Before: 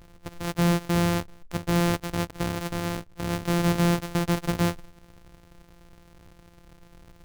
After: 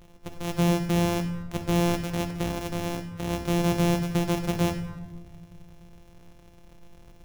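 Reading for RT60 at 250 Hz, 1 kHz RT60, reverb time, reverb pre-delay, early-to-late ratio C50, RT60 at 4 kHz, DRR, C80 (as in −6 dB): 2.2 s, 1.2 s, 1.3 s, 5 ms, 9.5 dB, 0.70 s, 4.5 dB, 11.0 dB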